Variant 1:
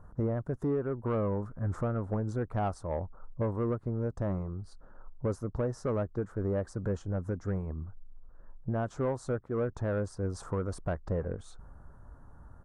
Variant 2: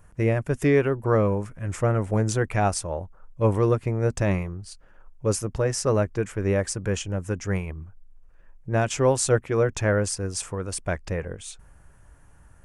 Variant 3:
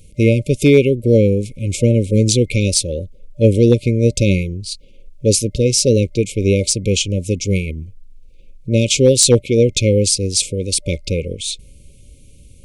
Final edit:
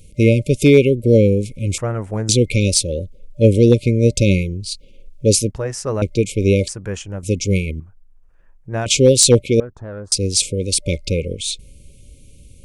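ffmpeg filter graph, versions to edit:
-filter_complex "[1:a]asplit=4[s0][s1][s2][s3];[2:a]asplit=6[s4][s5][s6][s7][s8][s9];[s4]atrim=end=1.782[s10];[s0]atrim=start=1.778:end=2.292[s11];[s5]atrim=start=2.288:end=5.512[s12];[s1]atrim=start=5.508:end=6.022[s13];[s6]atrim=start=6.018:end=6.682[s14];[s2]atrim=start=6.678:end=7.232[s15];[s7]atrim=start=7.228:end=7.802[s16];[s3]atrim=start=7.798:end=8.862[s17];[s8]atrim=start=8.858:end=9.602[s18];[0:a]atrim=start=9.598:end=10.122[s19];[s9]atrim=start=10.118[s20];[s10][s11]acrossfade=d=0.004:c1=hsin:c2=hsin[s21];[s21][s12]acrossfade=d=0.004:c1=hsin:c2=hsin[s22];[s22][s13]acrossfade=d=0.004:c1=hsin:c2=hsin[s23];[s23][s14]acrossfade=d=0.004:c1=hsin:c2=hsin[s24];[s24][s15]acrossfade=d=0.004:c1=hsin:c2=hsin[s25];[s25][s16]acrossfade=d=0.004:c1=hsin:c2=hsin[s26];[s26][s17]acrossfade=d=0.004:c1=hsin:c2=hsin[s27];[s27][s18]acrossfade=d=0.004:c1=hsin:c2=hsin[s28];[s28][s19]acrossfade=d=0.004:c1=hsin:c2=hsin[s29];[s29][s20]acrossfade=d=0.004:c1=hsin:c2=hsin"

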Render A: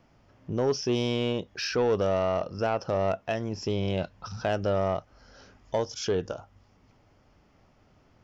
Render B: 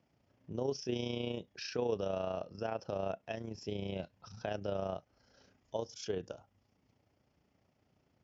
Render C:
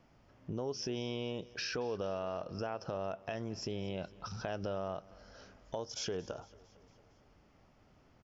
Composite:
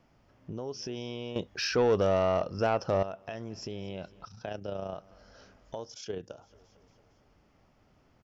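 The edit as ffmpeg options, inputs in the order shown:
-filter_complex "[1:a]asplit=2[s0][s1];[2:a]asplit=4[s2][s3][s4][s5];[s2]atrim=end=1.362[s6];[0:a]atrim=start=1.358:end=3.032[s7];[s3]atrim=start=3.028:end=4.252[s8];[s0]atrim=start=4.248:end=4.942[s9];[s4]atrim=start=4.938:end=6.04[s10];[s1]atrim=start=5.8:end=6.56[s11];[s5]atrim=start=6.32[s12];[s6][s7]acrossfade=d=0.004:c1=hsin:c2=hsin[s13];[s13][s8]acrossfade=d=0.004:c1=hsin:c2=hsin[s14];[s14][s9]acrossfade=d=0.004:c1=hsin:c2=hsin[s15];[s15][s10]acrossfade=d=0.004:c1=hsin:c2=hsin[s16];[s16][s11]acrossfade=d=0.24:c1=tri:c2=tri[s17];[s17][s12]acrossfade=d=0.24:c1=tri:c2=tri"

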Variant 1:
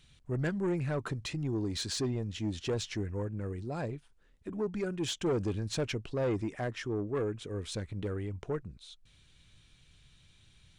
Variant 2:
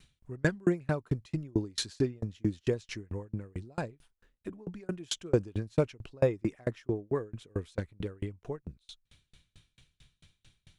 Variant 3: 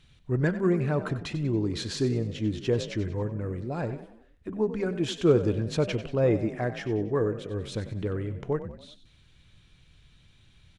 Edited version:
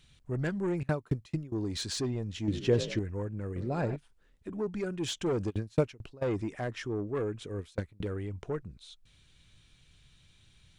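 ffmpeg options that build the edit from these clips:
-filter_complex "[1:a]asplit=3[s0][s1][s2];[2:a]asplit=2[s3][s4];[0:a]asplit=6[s5][s6][s7][s8][s9][s10];[s5]atrim=end=0.832[s11];[s0]atrim=start=0.828:end=1.522[s12];[s6]atrim=start=1.518:end=2.482[s13];[s3]atrim=start=2.478:end=2.992[s14];[s7]atrim=start=2.988:end=3.562[s15];[s4]atrim=start=3.558:end=3.962[s16];[s8]atrim=start=3.958:end=5.51[s17];[s1]atrim=start=5.49:end=6.23[s18];[s9]atrim=start=6.21:end=7.592[s19];[s2]atrim=start=7.588:end=8.062[s20];[s10]atrim=start=8.058[s21];[s11][s12]acrossfade=d=0.004:c1=hsin:c2=hsin[s22];[s22][s13]acrossfade=d=0.004:c1=hsin:c2=hsin[s23];[s23][s14]acrossfade=d=0.004:c1=hsin:c2=hsin[s24];[s24][s15]acrossfade=d=0.004:c1=hsin:c2=hsin[s25];[s25][s16]acrossfade=d=0.004:c1=hsin:c2=hsin[s26];[s26][s17]acrossfade=d=0.004:c1=hsin:c2=hsin[s27];[s27][s18]acrossfade=d=0.02:c1=tri:c2=tri[s28];[s28][s19]acrossfade=d=0.02:c1=tri:c2=tri[s29];[s29][s20]acrossfade=d=0.004:c1=hsin:c2=hsin[s30];[s30][s21]acrossfade=d=0.004:c1=hsin:c2=hsin"

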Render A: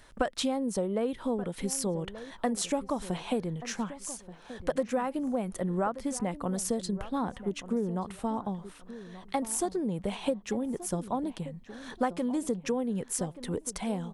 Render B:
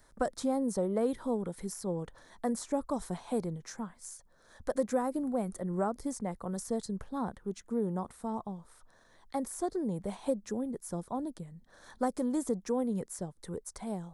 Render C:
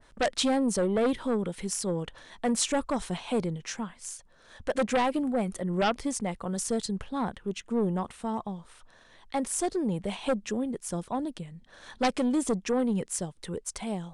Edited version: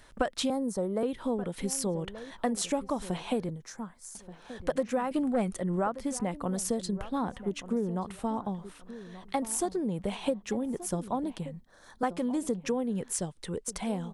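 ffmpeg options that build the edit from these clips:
-filter_complex "[1:a]asplit=3[s0][s1][s2];[2:a]asplit=2[s3][s4];[0:a]asplit=6[s5][s6][s7][s8][s9][s10];[s5]atrim=end=0.502[s11];[s0]atrim=start=0.498:end=1.032[s12];[s6]atrim=start=1.028:end=3.492[s13];[s1]atrim=start=3.488:end=4.152[s14];[s7]atrim=start=4.148:end=5.112[s15];[s3]atrim=start=5.108:end=5.762[s16];[s8]atrim=start=5.758:end=11.612[s17];[s2]atrim=start=11.608:end=12.032[s18];[s9]atrim=start=12.028:end=13.152[s19];[s4]atrim=start=13.148:end=13.682[s20];[s10]atrim=start=13.678[s21];[s11][s12]acrossfade=d=0.004:c1=hsin:c2=hsin[s22];[s22][s13]acrossfade=d=0.004:c1=hsin:c2=hsin[s23];[s23][s14]acrossfade=d=0.004:c1=hsin:c2=hsin[s24];[s24][s15]acrossfade=d=0.004:c1=hsin:c2=hsin[s25];[s25][s16]acrossfade=d=0.004:c1=hsin:c2=hsin[s26];[s26][s17]acrossfade=d=0.004:c1=hsin:c2=hsin[s27];[s27][s18]acrossfade=d=0.004:c1=hsin:c2=hsin[s28];[s28][s19]acrossfade=d=0.004:c1=hsin:c2=hsin[s29];[s29][s20]acrossfade=d=0.004:c1=hsin:c2=hsin[s30];[s30][s21]acrossfade=d=0.004:c1=hsin:c2=hsin"

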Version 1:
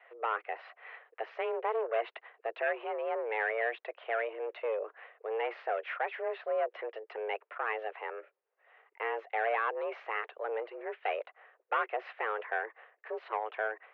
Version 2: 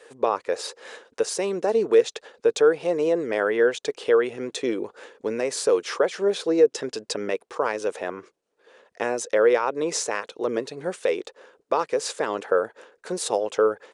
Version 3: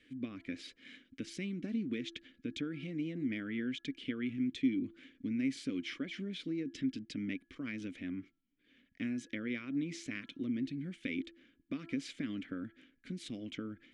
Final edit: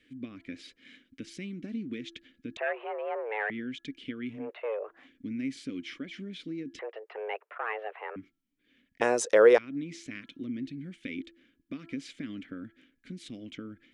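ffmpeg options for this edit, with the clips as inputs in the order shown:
-filter_complex "[0:a]asplit=3[s0][s1][s2];[2:a]asplit=5[s3][s4][s5][s6][s7];[s3]atrim=end=2.572[s8];[s0]atrim=start=2.568:end=3.502[s9];[s4]atrim=start=3.498:end=4.53[s10];[s1]atrim=start=4.29:end=5.11[s11];[s5]atrim=start=4.87:end=6.792[s12];[s2]atrim=start=6.788:end=8.162[s13];[s6]atrim=start=8.158:end=9.012[s14];[1:a]atrim=start=9.008:end=9.582[s15];[s7]atrim=start=9.578[s16];[s8][s9]acrossfade=d=0.004:c1=hsin:c2=hsin[s17];[s17][s10]acrossfade=d=0.004:c1=hsin:c2=hsin[s18];[s18][s11]acrossfade=d=0.24:c1=tri:c2=tri[s19];[s19][s12]acrossfade=d=0.24:c1=tri:c2=tri[s20];[s20][s13]acrossfade=d=0.004:c1=hsin:c2=hsin[s21];[s21][s14]acrossfade=d=0.004:c1=hsin:c2=hsin[s22];[s22][s15]acrossfade=d=0.004:c1=hsin:c2=hsin[s23];[s23][s16]acrossfade=d=0.004:c1=hsin:c2=hsin"

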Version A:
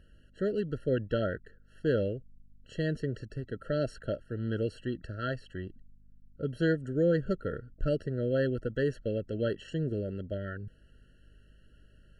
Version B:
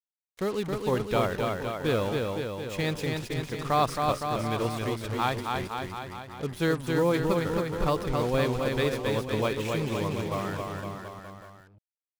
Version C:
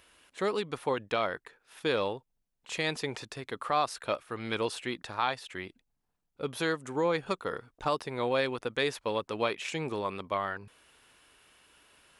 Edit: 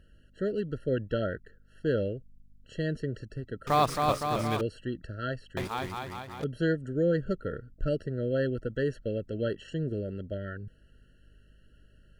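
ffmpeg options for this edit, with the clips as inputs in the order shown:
-filter_complex "[1:a]asplit=2[s0][s1];[0:a]asplit=3[s2][s3][s4];[s2]atrim=end=3.672[s5];[s0]atrim=start=3.668:end=4.612[s6];[s3]atrim=start=4.608:end=5.572[s7];[s1]atrim=start=5.568:end=6.442[s8];[s4]atrim=start=6.438[s9];[s5][s6]acrossfade=d=0.004:c1=hsin:c2=hsin[s10];[s10][s7]acrossfade=d=0.004:c1=hsin:c2=hsin[s11];[s11][s8]acrossfade=d=0.004:c1=hsin:c2=hsin[s12];[s12][s9]acrossfade=d=0.004:c1=hsin:c2=hsin"

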